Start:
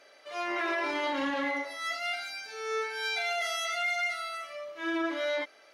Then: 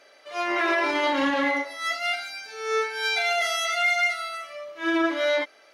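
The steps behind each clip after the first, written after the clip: upward expansion 1.5:1, over -40 dBFS; trim +8.5 dB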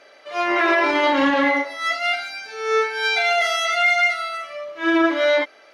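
treble shelf 6.6 kHz -11 dB; trim +6 dB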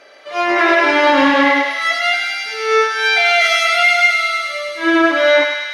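thinning echo 102 ms, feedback 84%, high-pass 1.2 kHz, level -4 dB; trim +4.5 dB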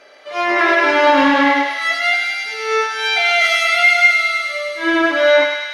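reverberation, pre-delay 5 ms, DRR 10 dB; trim -1.5 dB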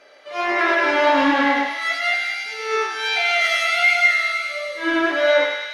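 flange 1.5 Hz, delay 9.2 ms, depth 9.9 ms, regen +72%

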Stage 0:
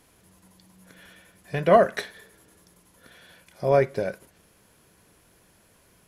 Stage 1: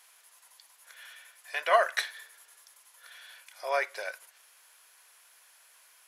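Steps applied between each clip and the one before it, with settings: Bessel high-pass 1.2 kHz, order 4; trim +3.5 dB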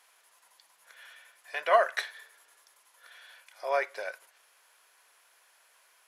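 tilt EQ -2 dB/octave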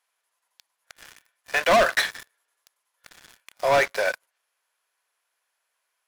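waveshaping leveller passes 5; trim -4 dB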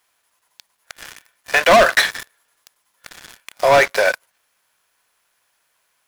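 in parallel at -0.5 dB: compression, threshold -26 dBFS, peak gain reduction 10 dB; on the sum: bit crusher 12-bit; trim +4.5 dB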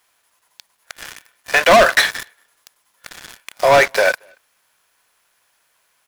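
in parallel at -6.5 dB: saturation -21.5 dBFS, distortion -8 dB; on the sum: speakerphone echo 230 ms, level -30 dB

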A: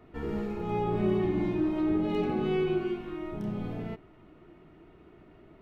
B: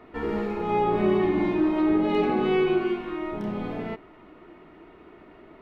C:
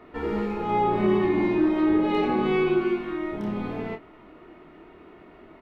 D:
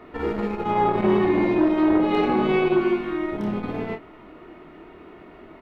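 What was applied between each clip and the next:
graphic EQ 125/250/500/1000/2000/4000 Hz -5/+5/+5/+8/+7/+5 dB
doubling 25 ms -7 dB
transformer saturation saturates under 400 Hz; trim +4 dB

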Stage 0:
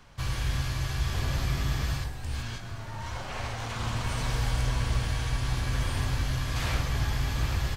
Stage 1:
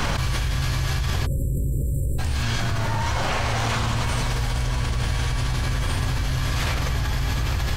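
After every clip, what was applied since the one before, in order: spectral selection erased 1.26–2.19 s, 590–7300 Hz; level flattener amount 100%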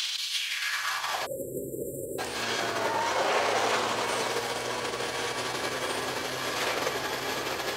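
peak limiter -18.5 dBFS, peak gain reduction 7 dB; high-pass sweep 3.5 kHz -> 420 Hz, 0.30–1.47 s; trim +2 dB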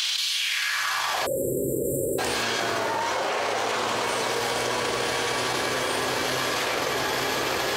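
level flattener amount 100%; trim -2.5 dB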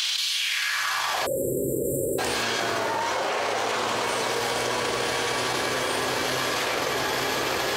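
no audible change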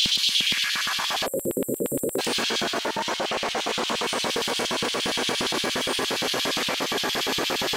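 wavefolder -17 dBFS; LFO high-pass square 8.6 Hz 210–3200 Hz

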